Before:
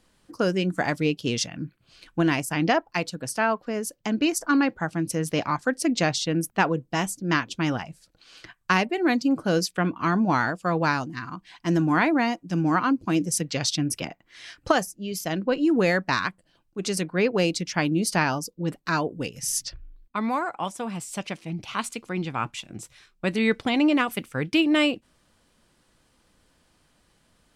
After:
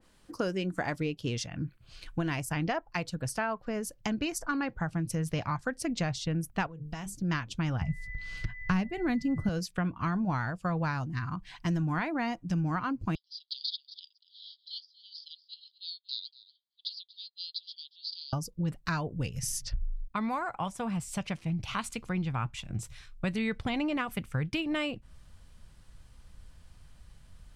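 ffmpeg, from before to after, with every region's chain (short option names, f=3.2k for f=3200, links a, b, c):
-filter_complex "[0:a]asettb=1/sr,asplit=3[a][b][c];[a]atrim=end=6.664[d];[b]atrim=start=6.66:end=7.15,asetpts=PTS-STARTPTS,afade=t=in:d=0.004:c=qsin,afade=t=out:st=0.486:d=0.004:c=qsin,bandreject=f=50:t=h:w=6,bandreject=f=100:t=h:w=6,bandreject=f=150:t=h:w=6,bandreject=f=200:t=h:w=6,bandreject=f=250:t=h:w=6,bandreject=f=300:t=h:w=6,bandreject=f=350:t=h:w=6,bandreject=f=400:t=h:w=6,bandreject=f=450:t=h:w=6,acompressor=threshold=-36dB:ratio=8:attack=3.2:release=140:knee=1:detection=peak[e];[c]atrim=start=7.146[f];[d][e]acrossfade=d=0.004:c1=hsin:c2=qsin[g];[g][f]acrossfade=d=0.004:c1=qsin:c2=hsin,asettb=1/sr,asplit=3[h][i][j];[h]atrim=end=7.814[k];[i]atrim=start=7.81:end=9.49,asetpts=PTS-STARTPTS,afade=t=in:d=0.004:c=qsin,afade=t=out:st=1.676:d=0.004:c=qsin,bass=f=250:g=14,treble=f=4k:g=2,aeval=exprs='val(0)+0.0112*sin(2*PI*2000*n/s)':c=same[l];[j]atrim=start=9.486[m];[k][l]acrossfade=d=0.004:c1=hsin:c2=qsin[n];[n][m]acrossfade=d=0.004:c1=qsin:c2=hsin,asettb=1/sr,asplit=3[o][p][q];[o]atrim=end=13.154[r];[p]atrim=start=13.15:end=18.33,asetpts=PTS-STARTPTS,afade=t=in:d=0.004:c=qsin,afade=t=out:st=5.176:d=0.004:c=qsin,asuperpass=centerf=4000:order=12:qfactor=2.4,aecho=1:1:237:0.112,atrim=end_sample=228438[s];[q]atrim=start=18.326[t];[r][s]acrossfade=d=0.004:c1=hsin:c2=qsin[u];[u][t]acrossfade=d=0.004:c1=qsin:c2=hsin,asubboost=boost=10:cutoff=96,acompressor=threshold=-30dB:ratio=3,adynamicequalizer=threshold=0.00398:dfrequency=2500:dqfactor=0.7:tfrequency=2500:tqfactor=0.7:attack=5:release=100:ratio=0.375:range=3:mode=cutabove:tftype=highshelf"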